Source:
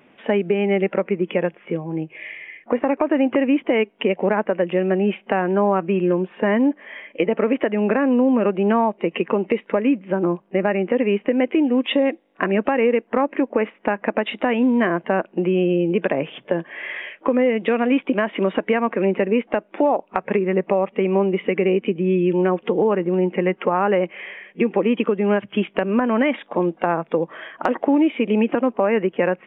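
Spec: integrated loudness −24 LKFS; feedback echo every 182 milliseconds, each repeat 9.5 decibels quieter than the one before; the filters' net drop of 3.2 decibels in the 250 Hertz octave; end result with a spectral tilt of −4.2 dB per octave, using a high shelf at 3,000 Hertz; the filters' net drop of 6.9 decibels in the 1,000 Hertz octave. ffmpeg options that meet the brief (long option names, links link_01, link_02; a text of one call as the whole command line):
ffmpeg -i in.wav -af "equalizer=frequency=250:width_type=o:gain=-3.5,equalizer=frequency=1000:width_type=o:gain=-8.5,highshelf=frequency=3000:gain=-6,aecho=1:1:182|364|546|728:0.335|0.111|0.0365|0.012,volume=-0.5dB" out.wav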